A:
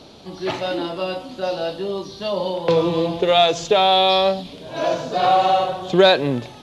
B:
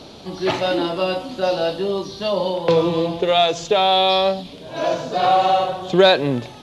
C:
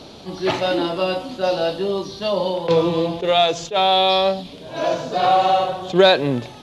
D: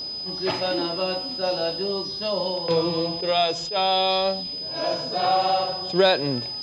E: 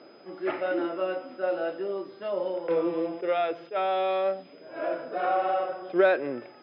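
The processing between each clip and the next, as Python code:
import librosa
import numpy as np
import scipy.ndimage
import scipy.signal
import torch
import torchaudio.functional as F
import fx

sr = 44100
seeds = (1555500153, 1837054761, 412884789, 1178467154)

y1 = fx.rider(x, sr, range_db=4, speed_s=2.0)
y2 = fx.attack_slew(y1, sr, db_per_s=280.0)
y3 = y2 + 10.0 ** (-24.0 / 20.0) * np.sin(2.0 * np.pi * 5000.0 * np.arange(len(y2)) / sr)
y3 = y3 * 10.0 ** (-5.5 / 20.0)
y4 = fx.cabinet(y3, sr, low_hz=300.0, low_slope=12, high_hz=2400.0, hz=(340.0, 560.0, 940.0, 1400.0, 2100.0), db=(7, 4, -5, 8, 4))
y4 = y4 * 10.0 ** (-5.5 / 20.0)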